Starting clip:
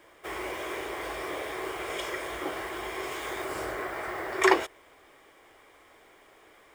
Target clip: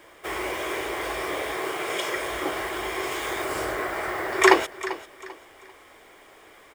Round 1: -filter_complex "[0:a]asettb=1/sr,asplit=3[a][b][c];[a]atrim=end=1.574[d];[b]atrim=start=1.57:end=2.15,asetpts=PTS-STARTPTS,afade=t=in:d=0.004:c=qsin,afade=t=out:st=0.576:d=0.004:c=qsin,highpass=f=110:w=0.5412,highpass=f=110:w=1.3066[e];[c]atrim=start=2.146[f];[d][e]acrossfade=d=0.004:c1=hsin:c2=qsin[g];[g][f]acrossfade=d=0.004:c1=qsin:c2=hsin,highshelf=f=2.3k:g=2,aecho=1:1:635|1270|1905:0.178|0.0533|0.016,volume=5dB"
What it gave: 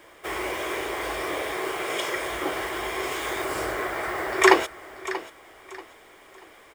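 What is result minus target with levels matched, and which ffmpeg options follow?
echo 0.242 s late
-filter_complex "[0:a]asettb=1/sr,asplit=3[a][b][c];[a]atrim=end=1.574[d];[b]atrim=start=1.57:end=2.15,asetpts=PTS-STARTPTS,afade=t=in:d=0.004:c=qsin,afade=t=out:st=0.576:d=0.004:c=qsin,highpass=f=110:w=0.5412,highpass=f=110:w=1.3066[e];[c]atrim=start=2.146[f];[d][e]acrossfade=d=0.004:c1=hsin:c2=qsin[g];[g][f]acrossfade=d=0.004:c1=qsin:c2=hsin,highshelf=f=2.3k:g=2,aecho=1:1:393|786|1179:0.178|0.0533|0.016,volume=5dB"

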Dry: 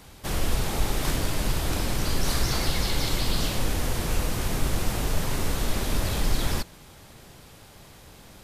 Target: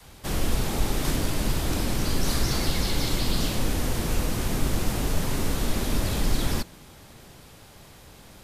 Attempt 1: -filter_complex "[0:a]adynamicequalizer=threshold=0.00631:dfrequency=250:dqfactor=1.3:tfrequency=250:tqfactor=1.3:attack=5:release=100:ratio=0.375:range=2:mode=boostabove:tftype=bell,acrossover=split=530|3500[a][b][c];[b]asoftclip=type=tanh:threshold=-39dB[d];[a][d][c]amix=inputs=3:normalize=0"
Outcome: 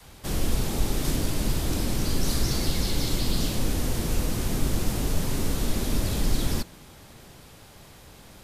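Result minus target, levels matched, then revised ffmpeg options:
soft clip: distortion +11 dB
-filter_complex "[0:a]adynamicequalizer=threshold=0.00631:dfrequency=250:dqfactor=1.3:tfrequency=250:tqfactor=1.3:attack=5:release=100:ratio=0.375:range=2:mode=boostabove:tftype=bell,acrossover=split=530|3500[a][b][c];[b]asoftclip=type=tanh:threshold=-29dB[d];[a][d][c]amix=inputs=3:normalize=0"

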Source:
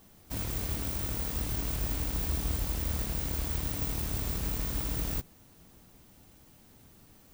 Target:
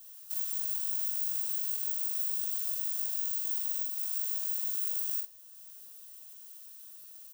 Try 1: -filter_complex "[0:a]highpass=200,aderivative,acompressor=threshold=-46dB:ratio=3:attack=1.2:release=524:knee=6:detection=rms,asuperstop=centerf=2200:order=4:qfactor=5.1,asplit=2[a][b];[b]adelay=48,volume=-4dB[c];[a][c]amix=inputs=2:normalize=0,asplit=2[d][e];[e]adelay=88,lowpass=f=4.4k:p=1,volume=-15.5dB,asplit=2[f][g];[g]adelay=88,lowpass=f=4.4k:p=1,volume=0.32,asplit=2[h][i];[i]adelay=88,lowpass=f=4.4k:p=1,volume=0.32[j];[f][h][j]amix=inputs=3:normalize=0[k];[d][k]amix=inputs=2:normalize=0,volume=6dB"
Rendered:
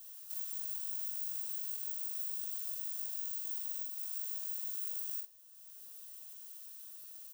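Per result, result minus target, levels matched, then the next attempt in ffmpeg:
compressor: peak gain reduction +6.5 dB; 125 Hz band -6.0 dB
-filter_complex "[0:a]highpass=200,aderivative,acompressor=threshold=-36dB:ratio=3:attack=1.2:release=524:knee=6:detection=rms,asuperstop=centerf=2200:order=4:qfactor=5.1,asplit=2[a][b];[b]adelay=48,volume=-4dB[c];[a][c]amix=inputs=2:normalize=0,asplit=2[d][e];[e]adelay=88,lowpass=f=4.4k:p=1,volume=-15.5dB,asplit=2[f][g];[g]adelay=88,lowpass=f=4.4k:p=1,volume=0.32,asplit=2[h][i];[i]adelay=88,lowpass=f=4.4k:p=1,volume=0.32[j];[f][h][j]amix=inputs=3:normalize=0[k];[d][k]amix=inputs=2:normalize=0,volume=6dB"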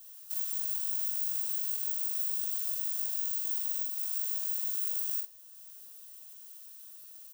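125 Hz band -7.0 dB
-filter_complex "[0:a]highpass=70,aderivative,acompressor=threshold=-36dB:ratio=3:attack=1.2:release=524:knee=6:detection=rms,asuperstop=centerf=2200:order=4:qfactor=5.1,asplit=2[a][b];[b]adelay=48,volume=-4dB[c];[a][c]amix=inputs=2:normalize=0,asplit=2[d][e];[e]adelay=88,lowpass=f=4.4k:p=1,volume=-15.5dB,asplit=2[f][g];[g]adelay=88,lowpass=f=4.4k:p=1,volume=0.32,asplit=2[h][i];[i]adelay=88,lowpass=f=4.4k:p=1,volume=0.32[j];[f][h][j]amix=inputs=3:normalize=0[k];[d][k]amix=inputs=2:normalize=0,volume=6dB"

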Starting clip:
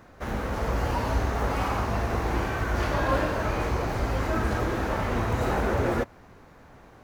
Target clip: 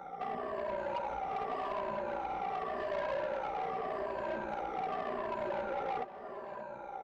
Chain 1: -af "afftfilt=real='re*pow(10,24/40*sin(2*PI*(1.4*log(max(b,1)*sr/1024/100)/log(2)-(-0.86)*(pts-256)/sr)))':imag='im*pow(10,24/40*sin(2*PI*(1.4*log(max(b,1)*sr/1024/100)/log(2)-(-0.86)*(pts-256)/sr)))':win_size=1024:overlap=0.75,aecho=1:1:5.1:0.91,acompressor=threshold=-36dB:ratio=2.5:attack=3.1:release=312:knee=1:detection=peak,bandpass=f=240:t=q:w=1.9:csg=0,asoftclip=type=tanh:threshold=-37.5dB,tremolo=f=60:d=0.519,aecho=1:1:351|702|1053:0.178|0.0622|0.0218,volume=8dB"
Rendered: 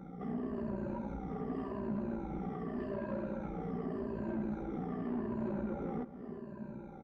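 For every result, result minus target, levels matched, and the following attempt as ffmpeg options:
250 Hz band +13.0 dB; echo 0.227 s early
-af "afftfilt=real='re*pow(10,24/40*sin(2*PI*(1.4*log(max(b,1)*sr/1024/100)/log(2)-(-0.86)*(pts-256)/sr)))':imag='im*pow(10,24/40*sin(2*PI*(1.4*log(max(b,1)*sr/1024/100)/log(2)-(-0.86)*(pts-256)/sr)))':win_size=1024:overlap=0.75,aecho=1:1:5.1:0.91,acompressor=threshold=-36dB:ratio=2.5:attack=3.1:release=312:knee=1:detection=peak,bandpass=f=690:t=q:w=1.9:csg=0,asoftclip=type=tanh:threshold=-37.5dB,tremolo=f=60:d=0.519,aecho=1:1:351|702|1053:0.178|0.0622|0.0218,volume=8dB"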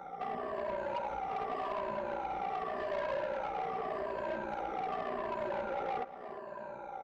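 echo 0.227 s early
-af "afftfilt=real='re*pow(10,24/40*sin(2*PI*(1.4*log(max(b,1)*sr/1024/100)/log(2)-(-0.86)*(pts-256)/sr)))':imag='im*pow(10,24/40*sin(2*PI*(1.4*log(max(b,1)*sr/1024/100)/log(2)-(-0.86)*(pts-256)/sr)))':win_size=1024:overlap=0.75,aecho=1:1:5.1:0.91,acompressor=threshold=-36dB:ratio=2.5:attack=3.1:release=312:knee=1:detection=peak,bandpass=f=690:t=q:w=1.9:csg=0,asoftclip=type=tanh:threshold=-37.5dB,tremolo=f=60:d=0.519,aecho=1:1:578|1156|1734:0.178|0.0622|0.0218,volume=8dB"

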